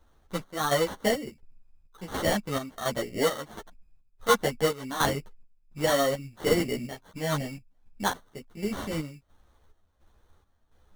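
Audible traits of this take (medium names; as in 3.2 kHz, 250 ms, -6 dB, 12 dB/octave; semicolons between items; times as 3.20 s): aliases and images of a low sample rate 2.5 kHz, jitter 0%; chopped level 1.4 Hz, depth 65%, duty 60%; a shimmering, thickened sound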